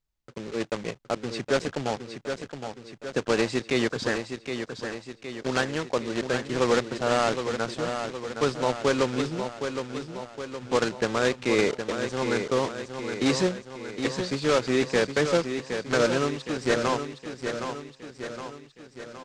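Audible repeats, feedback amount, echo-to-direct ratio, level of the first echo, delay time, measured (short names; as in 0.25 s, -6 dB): 6, 55%, -6.0 dB, -7.5 dB, 0.766 s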